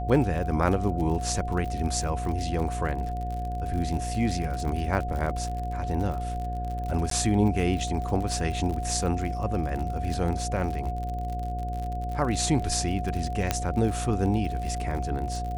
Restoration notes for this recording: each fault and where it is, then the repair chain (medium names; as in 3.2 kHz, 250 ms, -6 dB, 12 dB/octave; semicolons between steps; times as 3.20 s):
buzz 60 Hz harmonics 11 -32 dBFS
crackle 52 per s -32 dBFS
whine 720 Hz -33 dBFS
7.10–7.11 s: dropout 13 ms
13.51 s: pop -8 dBFS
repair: de-click; band-stop 720 Hz, Q 30; de-hum 60 Hz, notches 11; interpolate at 7.10 s, 13 ms